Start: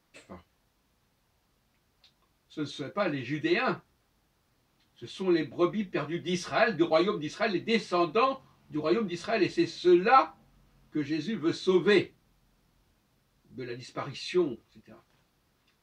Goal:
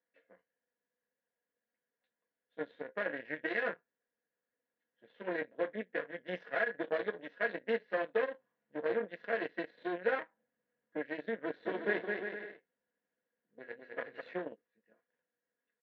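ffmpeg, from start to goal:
-filter_complex "[0:a]aecho=1:1:4.2:0.37,acompressor=threshold=-26dB:ratio=6,aeval=exprs='0.133*(cos(1*acos(clip(val(0)/0.133,-1,1)))-cos(1*PI/2))+0.0299*(cos(4*acos(clip(val(0)/0.133,-1,1)))-cos(4*PI/2))+0.00531*(cos(5*acos(clip(val(0)/0.133,-1,1)))-cos(5*PI/2))+0.0188*(cos(7*acos(clip(val(0)/0.133,-1,1)))-cos(7*PI/2))':c=same,highpass=320,equalizer=f=350:t=q:w=4:g=-4,equalizer=f=500:t=q:w=4:g=9,equalizer=f=820:t=q:w=4:g=-7,equalizer=f=1.2k:t=q:w=4:g=-10,equalizer=f=1.7k:t=q:w=4:g=10,equalizer=f=2.5k:t=q:w=4:g=-6,lowpass=f=2.6k:w=0.5412,lowpass=f=2.6k:w=1.3066,asplit=3[a][b][c];[a]afade=t=out:st=11.65:d=0.02[d];[b]aecho=1:1:210|357|459.9|531.9|582.4:0.631|0.398|0.251|0.158|0.1,afade=t=in:st=11.65:d=0.02,afade=t=out:st=14.2:d=0.02[e];[c]afade=t=in:st=14.2:d=0.02[f];[d][e][f]amix=inputs=3:normalize=0,volume=-4.5dB"

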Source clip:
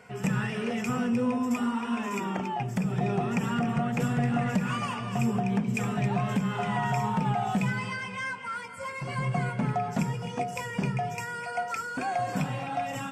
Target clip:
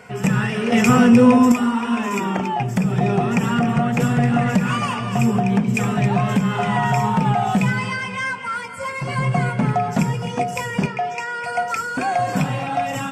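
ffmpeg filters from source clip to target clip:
-filter_complex "[0:a]asettb=1/sr,asplit=3[a][b][c];[a]atrim=end=0.724[d];[b]atrim=start=0.72:end=1.52,asetpts=PTS-STARTPTS,afade=t=in:d=0.004:c=qsin,afade=t=out:st=0.796:d=0.004:c=qsin,acontrast=69[e];[c]atrim=start=1.516[f];[d][e]acrossfade=d=0.004:c1=hsin:c2=qsin[g];[g][f]acrossfade=d=0.004:c1=qsin:c2=hsin,asettb=1/sr,asplit=3[h][i][j];[h]atrim=end=10.864[k];[i]atrim=start=10.86:end=11.44,asetpts=PTS-STARTPTS,afade=t=in:d=0.004:c=qsin,afade=t=out:st=0.576:d=0.004:c=qsin,highpass=350,lowpass=5.3k[l];[j]atrim=start=11.436[m];[k][l]acrossfade=d=0.004:c1=hsin:c2=qsin[n];[n][m]acrossfade=d=0.004:c1=qsin:c2=hsin,volume=9dB"

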